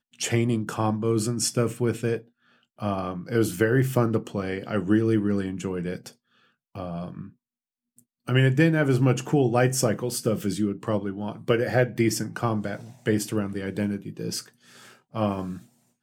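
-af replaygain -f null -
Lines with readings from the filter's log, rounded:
track_gain = +5.4 dB
track_peak = 0.307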